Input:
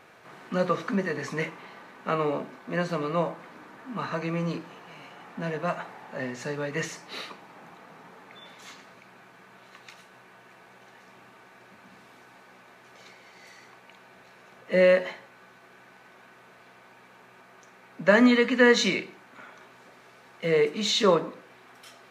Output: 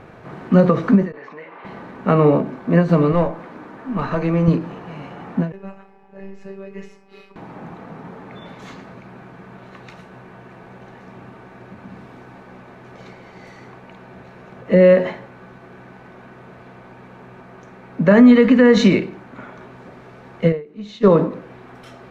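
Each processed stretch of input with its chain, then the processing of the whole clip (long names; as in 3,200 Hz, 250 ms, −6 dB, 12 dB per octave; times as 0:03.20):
0:01.12–0:01.65: downward compressor 5 to 1, threshold −39 dBFS + band-pass filter 630–3,600 Hz + high-frequency loss of the air 91 metres
0:03.12–0:04.48: low-shelf EQ 170 Hz −11.5 dB + tube saturation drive 24 dB, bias 0.25
0:05.52–0:07.36: phases set to zero 194 Hz + tuned comb filter 420 Hz, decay 0.2 s, mix 90% + one half of a high-frequency compander decoder only
0:20.52–0:21.10: high-shelf EQ 7,200 Hz −8 dB + expander for the loud parts 2.5 to 1, over −31 dBFS
whole clip: spectral tilt −4 dB per octave; boost into a limiter +11 dB; every ending faded ahead of time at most 150 dB per second; level −2 dB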